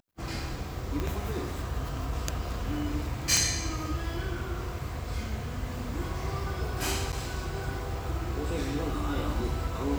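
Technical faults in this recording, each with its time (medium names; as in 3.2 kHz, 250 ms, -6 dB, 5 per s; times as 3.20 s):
1.00 s: pop -18 dBFS
3.37 s: pop
7.12–7.13 s: dropout 7.9 ms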